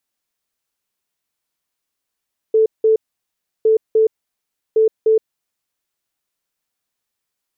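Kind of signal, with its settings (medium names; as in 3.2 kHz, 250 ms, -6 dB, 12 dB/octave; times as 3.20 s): beep pattern sine 440 Hz, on 0.12 s, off 0.18 s, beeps 2, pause 0.69 s, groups 3, -9.5 dBFS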